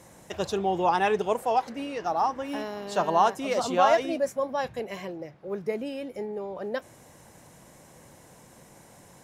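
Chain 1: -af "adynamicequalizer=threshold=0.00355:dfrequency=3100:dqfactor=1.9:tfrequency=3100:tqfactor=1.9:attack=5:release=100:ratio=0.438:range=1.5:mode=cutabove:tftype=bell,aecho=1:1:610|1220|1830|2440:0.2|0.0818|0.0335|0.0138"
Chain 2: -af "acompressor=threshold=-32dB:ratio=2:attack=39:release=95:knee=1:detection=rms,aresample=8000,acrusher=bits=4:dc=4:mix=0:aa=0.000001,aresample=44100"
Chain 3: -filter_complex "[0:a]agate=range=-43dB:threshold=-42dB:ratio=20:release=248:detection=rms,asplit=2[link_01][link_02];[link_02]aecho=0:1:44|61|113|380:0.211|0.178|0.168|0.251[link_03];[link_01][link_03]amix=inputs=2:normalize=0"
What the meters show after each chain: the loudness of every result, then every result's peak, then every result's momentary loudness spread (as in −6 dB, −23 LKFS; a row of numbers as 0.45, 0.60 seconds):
−27.5, −36.0, −27.0 LKFS; −8.5, −11.5, −7.0 dBFS; 15, 8, 13 LU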